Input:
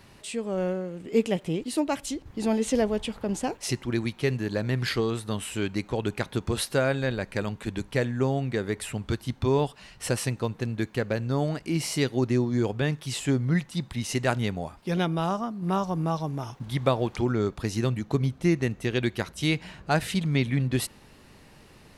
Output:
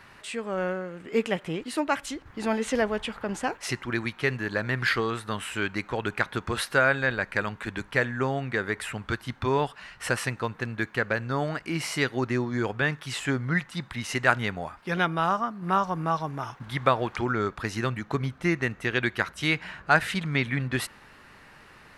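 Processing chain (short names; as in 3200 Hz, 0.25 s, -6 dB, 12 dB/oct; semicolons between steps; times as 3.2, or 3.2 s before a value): bell 1500 Hz +14.5 dB 1.7 oct; gain -4.5 dB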